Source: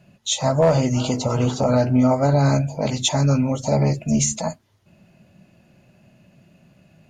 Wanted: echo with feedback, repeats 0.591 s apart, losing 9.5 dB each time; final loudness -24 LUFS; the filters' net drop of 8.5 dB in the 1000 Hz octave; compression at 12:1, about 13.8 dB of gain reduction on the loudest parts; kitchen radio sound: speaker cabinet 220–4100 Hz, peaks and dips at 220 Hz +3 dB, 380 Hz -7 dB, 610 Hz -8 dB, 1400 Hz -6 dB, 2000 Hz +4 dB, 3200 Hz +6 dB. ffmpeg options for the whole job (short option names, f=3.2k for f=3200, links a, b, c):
-af "equalizer=f=1k:t=o:g=-8.5,acompressor=threshold=-28dB:ratio=12,highpass=220,equalizer=f=220:t=q:w=4:g=3,equalizer=f=380:t=q:w=4:g=-7,equalizer=f=610:t=q:w=4:g=-8,equalizer=f=1.4k:t=q:w=4:g=-6,equalizer=f=2k:t=q:w=4:g=4,equalizer=f=3.2k:t=q:w=4:g=6,lowpass=f=4.1k:w=0.5412,lowpass=f=4.1k:w=1.3066,aecho=1:1:591|1182|1773|2364:0.335|0.111|0.0365|0.012,volume=12dB"